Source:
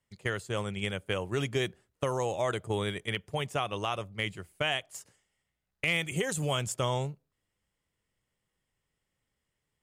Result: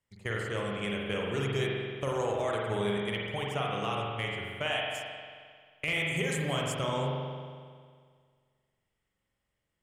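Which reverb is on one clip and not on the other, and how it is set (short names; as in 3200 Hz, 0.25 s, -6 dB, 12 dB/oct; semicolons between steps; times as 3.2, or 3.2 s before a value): spring tank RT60 1.9 s, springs 44 ms, chirp 45 ms, DRR -2.5 dB; gain -4 dB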